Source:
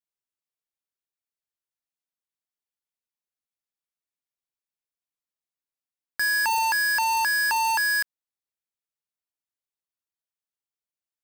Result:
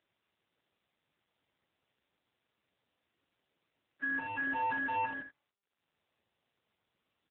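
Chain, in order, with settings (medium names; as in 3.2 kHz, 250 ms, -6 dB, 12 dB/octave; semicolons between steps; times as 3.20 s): plain phase-vocoder stretch 0.65×; de-hum 289.4 Hz, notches 26; in parallel at -10 dB: sample-rate reducer 1.4 kHz, jitter 0%; on the sum: upward compressor, threshold -44 dBFS; early reflections 59 ms -14.5 dB, 78 ms -10 dB; trim -9 dB; AMR-NB 7.4 kbps 8 kHz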